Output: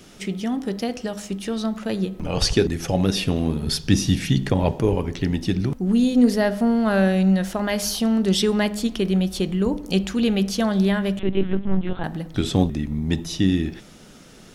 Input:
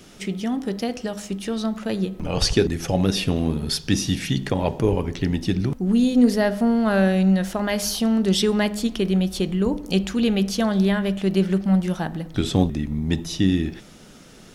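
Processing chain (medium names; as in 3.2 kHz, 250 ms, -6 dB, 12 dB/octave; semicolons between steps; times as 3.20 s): 3.66–4.72 s: bass shelf 220 Hz +6 dB; 11.19–12.04 s: LPC vocoder at 8 kHz pitch kept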